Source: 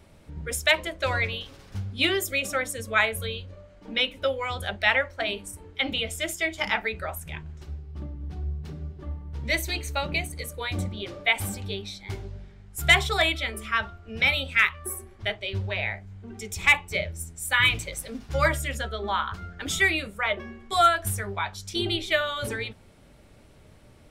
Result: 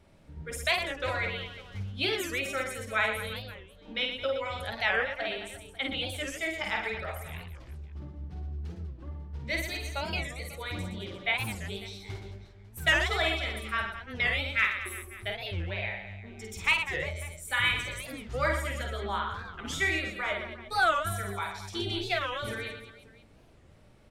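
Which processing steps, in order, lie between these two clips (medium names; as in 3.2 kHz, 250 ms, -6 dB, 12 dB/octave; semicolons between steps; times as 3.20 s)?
treble shelf 7 kHz -6.5 dB; reverse bouncing-ball echo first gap 50 ms, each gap 1.4×, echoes 5; warped record 45 rpm, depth 250 cents; trim -6.5 dB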